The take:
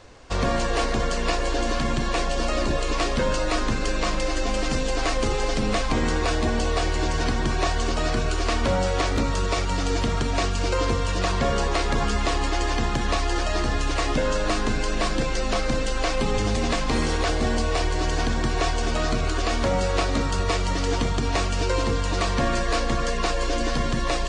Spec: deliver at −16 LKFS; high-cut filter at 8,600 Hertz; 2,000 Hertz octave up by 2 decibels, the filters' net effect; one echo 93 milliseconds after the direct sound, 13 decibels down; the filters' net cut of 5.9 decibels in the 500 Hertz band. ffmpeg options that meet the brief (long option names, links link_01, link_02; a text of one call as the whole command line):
ffmpeg -i in.wav -af "lowpass=8600,equalizer=frequency=500:width_type=o:gain=-7.5,equalizer=frequency=2000:width_type=o:gain=3,aecho=1:1:93:0.224,volume=9.5dB" out.wav